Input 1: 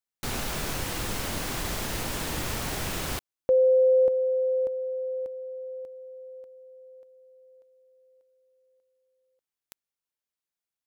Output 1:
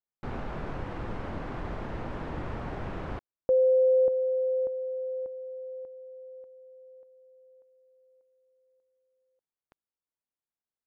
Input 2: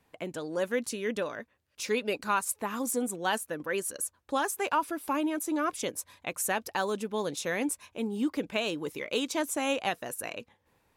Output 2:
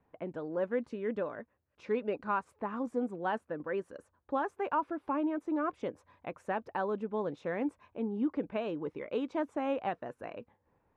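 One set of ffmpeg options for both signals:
-af "lowpass=1.3k,volume=-2dB"

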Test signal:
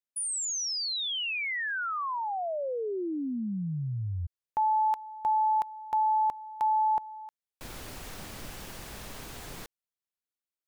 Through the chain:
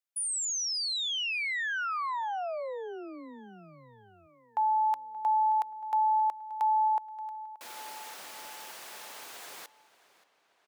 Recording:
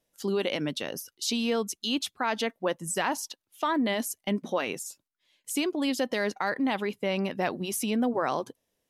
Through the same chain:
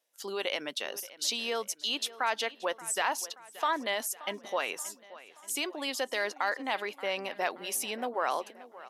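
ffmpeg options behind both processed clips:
-filter_complex "[0:a]highpass=600,asplit=2[a][b];[b]adelay=578,lowpass=f=5k:p=1,volume=-17.5dB,asplit=2[c][d];[d]adelay=578,lowpass=f=5k:p=1,volume=0.53,asplit=2[e][f];[f]adelay=578,lowpass=f=5k:p=1,volume=0.53,asplit=2[g][h];[h]adelay=578,lowpass=f=5k:p=1,volume=0.53,asplit=2[i][j];[j]adelay=578,lowpass=f=5k:p=1,volume=0.53[k];[c][e][g][i][k]amix=inputs=5:normalize=0[l];[a][l]amix=inputs=2:normalize=0"

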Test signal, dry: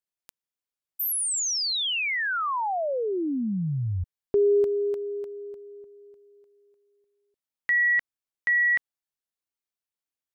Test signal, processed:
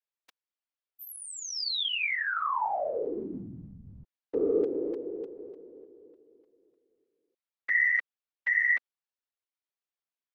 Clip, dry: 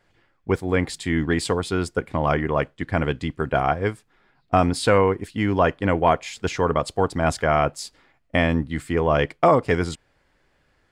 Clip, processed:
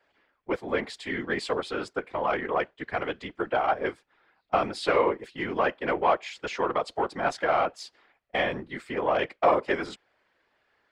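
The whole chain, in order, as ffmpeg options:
-filter_complex "[0:a]acontrast=62,acrossover=split=320 5100:gain=0.112 1 0.178[a][b][c];[a][b][c]amix=inputs=3:normalize=0,afftfilt=real='hypot(re,im)*cos(2*PI*random(0))':imag='hypot(re,im)*sin(2*PI*random(1))':win_size=512:overlap=0.75,volume=-3dB"

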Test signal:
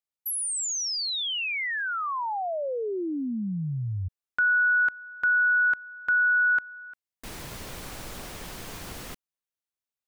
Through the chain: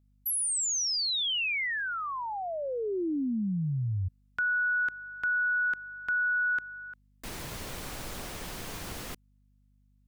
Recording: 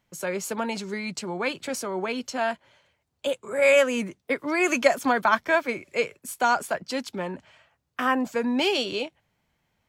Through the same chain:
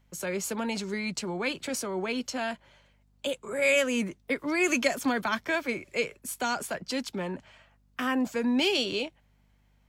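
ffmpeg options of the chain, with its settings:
-filter_complex "[0:a]acrossover=split=400|2000[a][b][c];[b]acompressor=threshold=-39dB:ratio=2:attack=1.5:release=61:knee=2.83:detection=peak[d];[a][d][c]amix=inputs=3:normalize=0,aeval=exprs='val(0)+0.000631*(sin(2*PI*50*n/s)+sin(2*PI*2*50*n/s)/2+sin(2*PI*3*50*n/s)/3+sin(2*PI*4*50*n/s)/4+sin(2*PI*5*50*n/s)/5)':c=same"

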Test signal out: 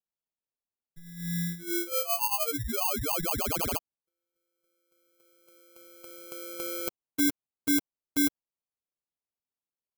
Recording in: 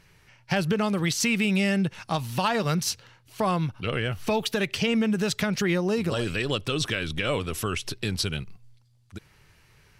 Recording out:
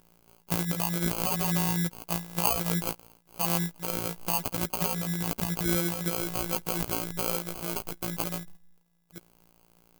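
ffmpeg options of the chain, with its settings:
-af "afftfilt=real='hypot(re,im)*cos(PI*b)':imag='0':win_size=1024:overlap=0.75,acrusher=samples=24:mix=1:aa=0.000001,aemphasis=mode=production:type=50fm,volume=-3dB"

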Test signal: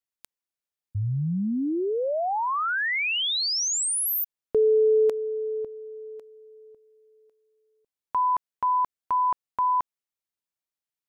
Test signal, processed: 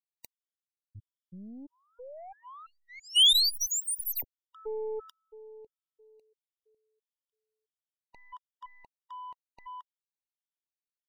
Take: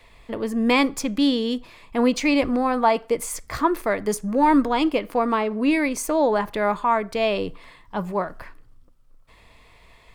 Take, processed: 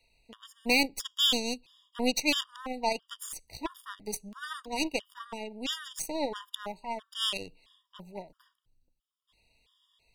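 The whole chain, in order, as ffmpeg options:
-af "highshelf=f=2.4k:t=q:w=3:g=8.5,aeval=exprs='0.891*(cos(1*acos(clip(val(0)/0.891,-1,1)))-cos(1*PI/2))+0.0501*(cos(3*acos(clip(val(0)/0.891,-1,1)))-cos(3*PI/2))+0.0447*(cos(5*acos(clip(val(0)/0.891,-1,1)))-cos(5*PI/2))+0.0316*(cos(6*acos(clip(val(0)/0.891,-1,1)))-cos(6*PI/2))+0.112*(cos(7*acos(clip(val(0)/0.891,-1,1)))-cos(7*PI/2))':c=same,afftfilt=real='re*gt(sin(2*PI*1.5*pts/sr)*(1-2*mod(floor(b*sr/1024/950),2)),0)':imag='im*gt(sin(2*PI*1.5*pts/sr)*(1-2*mod(floor(b*sr/1024/950),2)),0)':win_size=1024:overlap=0.75,volume=-5.5dB"

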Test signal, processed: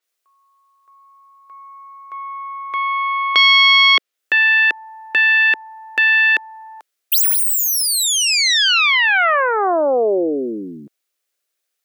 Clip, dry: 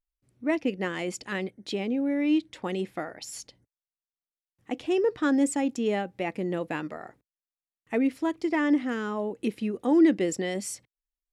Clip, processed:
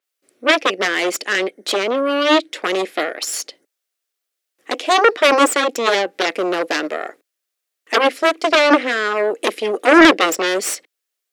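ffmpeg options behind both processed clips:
-af "aeval=exprs='0.251*(cos(1*acos(clip(val(0)/0.251,-1,1)))-cos(1*PI/2))+0.0562*(cos(3*acos(clip(val(0)/0.251,-1,1)))-cos(3*PI/2))+0.0562*(cos(4*acos(clip(val(0)/0.251,-1,1)))-cos(4*PI/2))+0.0794*(cos(6*acos(clip(val(0)/0.251,-1,1)))-cos(6*PI/2))+0.0447*(cos(7*acos(clip(val(0)/0.251,-1,1)))-cos(7*PI/2))':c=same,highpass=f=360:w=0.5412,highpass=f=360:w=1.3066,equalizer=f=920:w=3.3:g=-9,apsyclip=19.5dB,adynamicequalizer=threshold=0.0447:dfrequency=5200:dqfactor=0.7:tfrequency=5200:tqfactor=0.7:attack=5:release=100:ratio=0.375:range=3.5:mode=cutabove:tftype=highshelf,volume=-2dB"

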